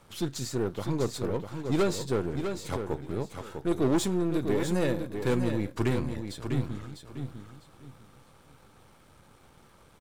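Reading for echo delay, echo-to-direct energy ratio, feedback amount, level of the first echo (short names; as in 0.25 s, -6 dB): 0.65 s, -6.5 dB, 24%, -7.0 dB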